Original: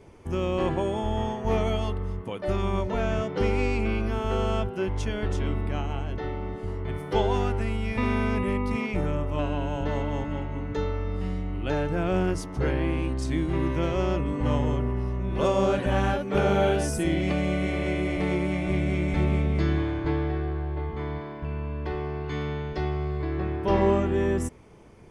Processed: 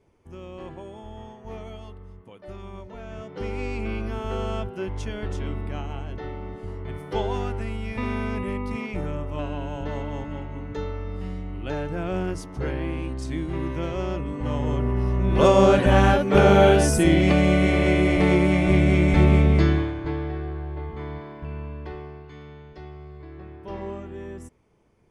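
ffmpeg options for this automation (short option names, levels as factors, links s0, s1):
-af "volume=2.37,afade=t=in:st=3.05:d=0.89:silence=0.298538,afade=t=in:st=14.54:d=0.78:silence=0.316228,afade=t=out:st=19.53:d=0.41:silence=0.334965,afade=t=out:st=21.6:d=0.72:silence=0.298538"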